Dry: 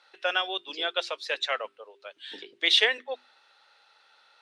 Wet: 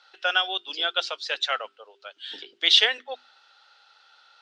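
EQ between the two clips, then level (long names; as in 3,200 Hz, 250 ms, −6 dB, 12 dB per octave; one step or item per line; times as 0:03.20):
bass and treble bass +3 dB, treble +8 dB
loudspeaker in its box 190–7,300 Hz, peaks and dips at 760 Hz +6 dB, 1,400 Hz +9 dB, 3,100 Hz +7 dB, 4,800 Hz +4 dB
−3.0 dB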